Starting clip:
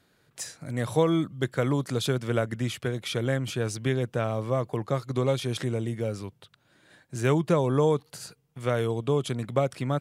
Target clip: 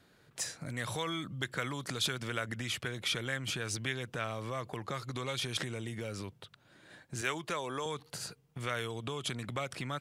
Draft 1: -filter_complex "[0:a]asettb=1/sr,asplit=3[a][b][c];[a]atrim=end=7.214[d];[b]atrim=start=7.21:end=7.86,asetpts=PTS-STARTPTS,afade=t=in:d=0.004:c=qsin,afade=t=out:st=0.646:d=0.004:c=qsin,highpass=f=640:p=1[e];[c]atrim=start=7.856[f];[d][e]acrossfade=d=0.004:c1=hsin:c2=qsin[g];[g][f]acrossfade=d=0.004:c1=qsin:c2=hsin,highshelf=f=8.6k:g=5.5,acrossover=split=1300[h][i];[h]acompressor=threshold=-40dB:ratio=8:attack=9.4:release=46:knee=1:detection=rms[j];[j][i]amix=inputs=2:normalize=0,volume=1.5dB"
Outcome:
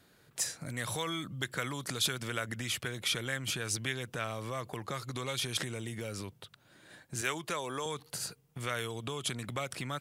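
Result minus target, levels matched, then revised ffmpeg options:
8000 Hz band +3.5 dB
-filter_complex "[0:a]asettb=1/sr,asplit=3[a][b][c];[a]atrim=end=7.214[d];[b]atrim=start=7.21:end=7.86,asetpts=PTS-STARTPTS,afade=t=in:d=0.004:c=qsin,afade=t=out:st=0.646:d=0.004:c=qsin,highpass=f=640:p=1[e];[c]atrim=start=7.856[f];[d][e]acrossfade=d=0.004:c1=hsin:c2=qsin[g];[g][f]acrossfade=d=0.004:c1=qsin:c2=hsin,highshelf=f=8.6k:g=-5,acrossover=split=1300[h][i];[h]acompressor=threshold=-40dB:ratio=8:attack=9.4:release=46:knee=1:detection=rms[j];[j][i]amix=inputs=2:normalize=0,volume=1.5dB"

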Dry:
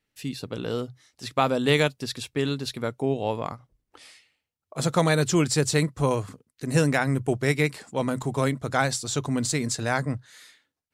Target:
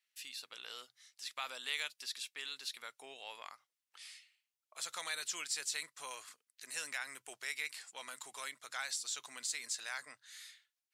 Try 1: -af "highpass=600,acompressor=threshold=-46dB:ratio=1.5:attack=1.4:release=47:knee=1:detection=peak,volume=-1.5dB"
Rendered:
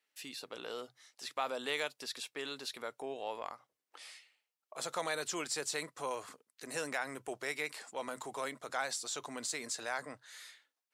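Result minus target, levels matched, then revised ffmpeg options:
500 Hz band +13.5 dB
-af "highpass=2k,acompressor=threshold=-46dB:ratio=1.5:attack=1.4:release=47:knee=1:detection=peak,volume=-1.5dB"

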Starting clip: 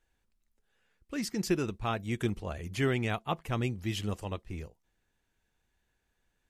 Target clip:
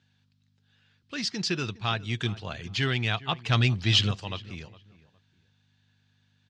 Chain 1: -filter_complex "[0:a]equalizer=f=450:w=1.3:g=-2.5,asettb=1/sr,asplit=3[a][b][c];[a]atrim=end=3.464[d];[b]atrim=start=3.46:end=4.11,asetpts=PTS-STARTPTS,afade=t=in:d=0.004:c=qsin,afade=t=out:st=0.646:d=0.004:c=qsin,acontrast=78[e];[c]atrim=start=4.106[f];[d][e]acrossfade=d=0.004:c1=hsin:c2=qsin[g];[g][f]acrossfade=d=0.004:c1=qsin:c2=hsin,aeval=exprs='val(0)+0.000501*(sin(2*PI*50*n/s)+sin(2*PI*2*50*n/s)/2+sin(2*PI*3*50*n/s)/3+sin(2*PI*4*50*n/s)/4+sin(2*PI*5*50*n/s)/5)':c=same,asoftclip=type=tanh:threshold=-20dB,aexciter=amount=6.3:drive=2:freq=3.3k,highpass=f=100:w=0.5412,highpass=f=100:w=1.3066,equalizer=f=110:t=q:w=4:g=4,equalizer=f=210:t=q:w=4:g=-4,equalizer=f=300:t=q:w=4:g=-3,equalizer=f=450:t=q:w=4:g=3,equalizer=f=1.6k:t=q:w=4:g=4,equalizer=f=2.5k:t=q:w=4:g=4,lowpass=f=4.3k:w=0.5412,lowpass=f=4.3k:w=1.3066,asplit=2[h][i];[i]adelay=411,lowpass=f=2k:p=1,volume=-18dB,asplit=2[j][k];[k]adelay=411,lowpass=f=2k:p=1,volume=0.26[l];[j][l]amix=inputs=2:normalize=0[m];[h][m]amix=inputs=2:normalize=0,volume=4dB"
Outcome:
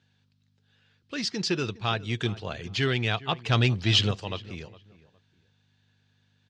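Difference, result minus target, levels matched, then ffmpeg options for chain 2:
500 Hz band +4.0 dB
-filter_complex "[0:a]equalizer=f=450:w=1.3:g=-8.5,asettb=1/sr,asplit=3[a][b][c];[a]atrim=end=3.464[d];[b]atrim=start=3.46:end=4.11,asetpts=PTS-STARTPTS,afade=t=in:d=0.004:c=qsin,afade=t=out:st=0.646:d=0.004:c=qsin,acontrast=78[e];[c]atrim=start=4.106[f];[d][e]acrossfade=d=0.004:c1=hsin:c2=qsin[g];[g][f]acrossfade=d=0.004:c1=qsin:c2=hsin,aeval=exprs='val(0)+0.000501*(sin(2*PI*50*n/s)+sin(2*PI*2*50*n/s)/2+sin(2*PI*3*50*n/s)/3+sin(2*PI*4*50*n/s)/4+sin(2*PI*5*50*n/s)/5)':c=same,asoftclip=type=tanh:threshold=-20dB,aexciter=amount=6.3:drive=2:freq=3.3k,highpass=f=100:w=0.5412,highpass=f=100:w=1.3066,equalizer=f=110:t=q:w=4:g=4,equalizer=f=210:t=q:w=4:g=-4,equalizer=f=300:t=q:w=4:g=-3,equalizer=f=450:t=q:w=4:g=3,equalizer=f=1.6k:t=q:w=4:g=4,equalizer=f=2.5k:t=q:w=4:g=4,lowpass=f=4.3k:w=0.5412,lowpass=f=4.3k:w=1.3066,asplit=2[h][i];[i]adelay=411,lowpass=f=2k:p=1,volume=-18dB,asplit=2[j][k];[k]adelay=411,lowpass=f=2k:p=1,volume=0.26[l];[j][l]amix=inputs=2:normalize=0[m];[h][m]amix=inputs=2:normalize=0,volume=4dB"

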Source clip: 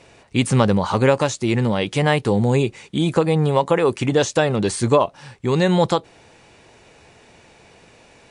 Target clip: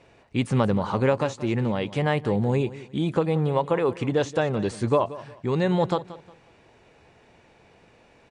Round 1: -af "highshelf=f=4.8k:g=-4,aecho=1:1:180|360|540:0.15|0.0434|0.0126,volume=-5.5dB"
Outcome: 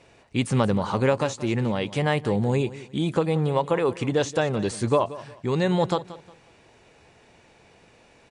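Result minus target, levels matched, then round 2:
8000 Hz band +6.5 dB
-af "highshelf=f=4.8k:g=-13.5,aecho=1:1:180|360|540:0.15|0.0434|0.0126,volume=-5.5dB"

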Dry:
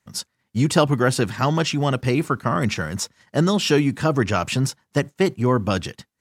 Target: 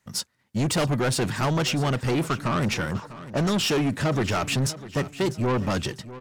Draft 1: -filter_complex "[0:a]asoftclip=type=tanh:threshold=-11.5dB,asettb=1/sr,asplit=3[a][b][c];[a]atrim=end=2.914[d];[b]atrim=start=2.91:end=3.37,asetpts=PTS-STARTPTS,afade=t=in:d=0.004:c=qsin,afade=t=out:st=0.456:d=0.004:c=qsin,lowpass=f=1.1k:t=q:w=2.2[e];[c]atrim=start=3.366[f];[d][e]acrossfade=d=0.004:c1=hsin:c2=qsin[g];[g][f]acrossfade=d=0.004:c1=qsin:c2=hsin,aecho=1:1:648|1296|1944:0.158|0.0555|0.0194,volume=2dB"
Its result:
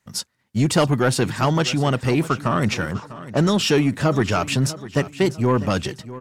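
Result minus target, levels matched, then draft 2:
soft clip: distortion -10 dB
-filter_complex "[0:a]asoftclip=type=tanh:threshold=-22dB,asettb=1/sr,asplit=3[a][b][c];[a]atrim=end=2.914[d];[b]atrim=start=2.91:end=3.37,asetpts=PTS-STARTPTS,afade=t=in:d=0.004:c=qsin,afade=t=out:st=0.456:d=0.004:c=qsin,lowpass=f=1.1k:t=q:w=2.2[e];[c]atrim=start=3.366[f];[d][e]acrossfade=d=0.004:c1=hsin:c2=qsin[g];[g][f]acrossfade=d=0.004:c1=qsin:c2=hsin,aecho=1:1:648|1296|1944:0.158|0.0555|0.0194,volume=2dB"

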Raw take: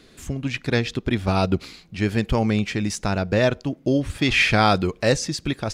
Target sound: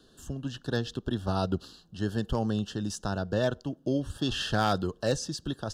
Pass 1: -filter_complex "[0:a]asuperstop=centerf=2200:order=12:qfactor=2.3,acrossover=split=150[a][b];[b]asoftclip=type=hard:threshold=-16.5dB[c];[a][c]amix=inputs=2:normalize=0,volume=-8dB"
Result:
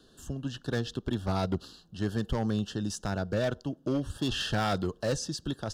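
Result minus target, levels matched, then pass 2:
hard clip: distortion +12 dB
-filter_complex "[0:a]asuperstop=centerf=2200:order=12:qfactor=2.3,acrossover=split=150[a][b];[b]asoftclip=type=hard:threshold=-9.5dB[c];[a][c]amix=inputs=2:normalize=0,volume=-8dB"

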